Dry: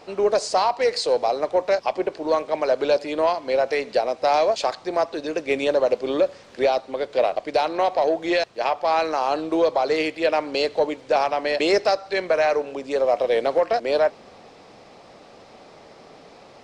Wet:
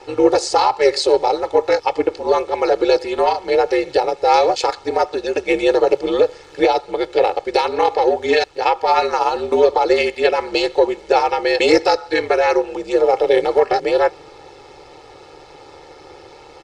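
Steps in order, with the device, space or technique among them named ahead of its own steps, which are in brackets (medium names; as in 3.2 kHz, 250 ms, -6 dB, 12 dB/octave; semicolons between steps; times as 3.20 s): ring-modulated robot voice (ring modulator 74 Hz; comb 2.3 ms, depth 85%); trim +6 dB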